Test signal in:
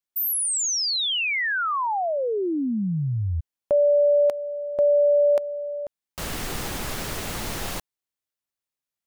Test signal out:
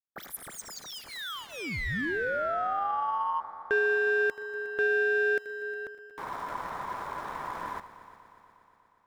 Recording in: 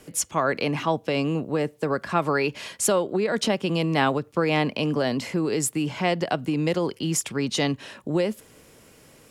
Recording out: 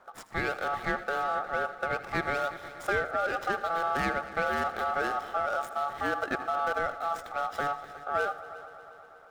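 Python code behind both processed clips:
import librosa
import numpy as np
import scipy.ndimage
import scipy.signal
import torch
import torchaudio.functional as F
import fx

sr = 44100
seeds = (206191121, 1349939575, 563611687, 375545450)

p1 = scipy.signal.medfilt(x, 25)
p2 = fx.notch(p1, sr, hz=3700.0, q=23.0)
p3 = fx.echo_heads(p2, sr, ms=120, heads='all three', feedback_pct=62, wet_db=-21.0)
p4 = p3 * np.sin(2.0 * np.pi * 1000.0 * np.arange(len(p3)) / sr)
p5 = p4 + 10.0 ** (-16.5 / 20.0) * np.pad(p4, (int(80 * sr / 1000.0), 0))[:len(p4)]
p6 = 10.0 ** (-23.5 / 20.0) * np.tanh(p5 / 10.0 ** (-23.5 / 20.0))
p7 = p5 + (p6 * librosa.db_to_amplitude(-6.0))
y = p7 * librosa.db_to_amplitude(-5.0)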